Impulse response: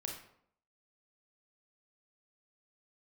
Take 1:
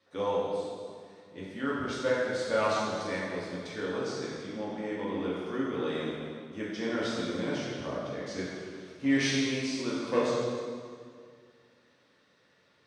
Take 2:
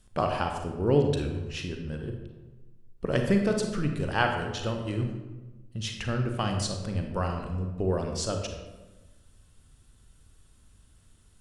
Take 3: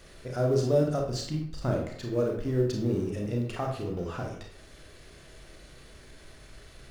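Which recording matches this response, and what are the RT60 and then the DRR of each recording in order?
3; 2.1, 1.2, 0.70 s; -8.0, 3.5, 0.5 dB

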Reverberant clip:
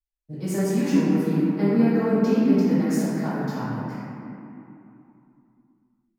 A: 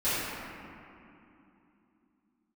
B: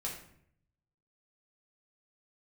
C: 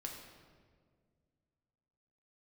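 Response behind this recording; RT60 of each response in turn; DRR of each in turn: A; 2.9, 0.65, 1.9 s; -17.0, -3.5, 0.0 dB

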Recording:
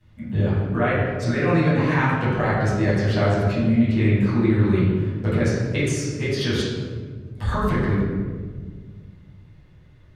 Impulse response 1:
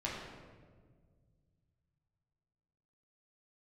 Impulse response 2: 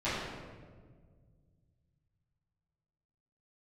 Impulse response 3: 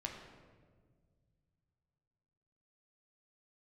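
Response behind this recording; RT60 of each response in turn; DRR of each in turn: 2; 1.7, 1.7, 1.7 s; -5.5, -15.5, 0.5 dB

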